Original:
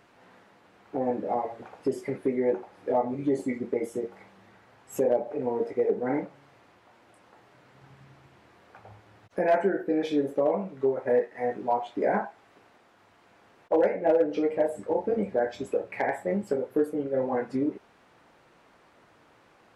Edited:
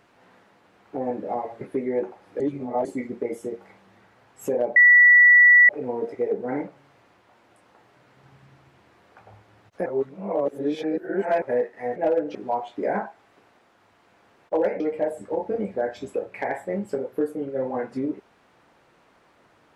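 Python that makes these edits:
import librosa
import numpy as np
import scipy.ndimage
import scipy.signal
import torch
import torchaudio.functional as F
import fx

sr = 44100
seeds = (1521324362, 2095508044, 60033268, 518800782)

y = fx.edit(x, sr, fx.cut(start_s=1.61, length_s=0.51),
    fx.reverse_span(start_s=2.91, length_s=0.45),
    fx.insert_tone(at_s=5.27, length_s=0.93, hz=1950.0, db=-9.5),
    fx.reverse_span(start_s=9.44, length_s=1.56),
    fx.move(start_s=13.99, length_s=0.39, to_s=11.54), tone=tone)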